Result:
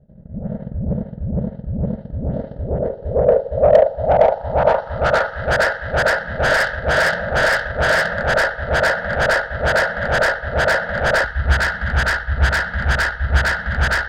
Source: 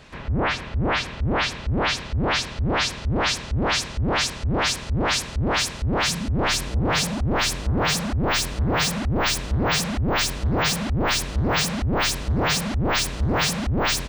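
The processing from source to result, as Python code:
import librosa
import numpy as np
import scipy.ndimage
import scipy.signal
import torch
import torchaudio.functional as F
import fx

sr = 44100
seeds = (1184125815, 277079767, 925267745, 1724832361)

y = fx.tilt_shelf(x, sr, db=-6.5, hz=1400.0)
y = fx.fixed_phaser(y, sr, hz=1600.0, stages=8)
y = fx.auto_swell(y, sr, attack_ms=213.0)
y = fx.filter_sweep_lowpass(y, sr, from_hz=210.0, to_hz=1600.0, start_s=1.76, end_s=5.41, q=3.6)
y = fx.rev_plate(y, sr, seeds[0], rt60_s=0.57, hf_ratio=0.6, predelay_ms=75, drr_db=-5.0)
y = fx.transient(y, sr, attack_db=8, sustain_db=-9)
y = 10.0 ** (-17.5 / 20.0) * np.tanh(y / 10.0 ** (-17.5 / 20.0))
y = fx.peak_eq(y, sr, hz=fx.steps((0.0, 560.0), (11.24, 61.0)), db=13.0, octaves=0.81)
y = y * 10.0 ** (2.5 / 20.0)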